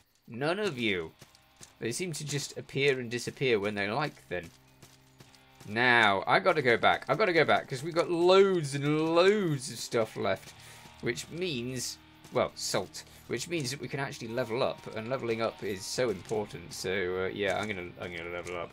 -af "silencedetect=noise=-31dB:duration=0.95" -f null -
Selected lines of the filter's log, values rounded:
silence_start: 4.39
silence_end: 5.71 | silence_duration: 1.31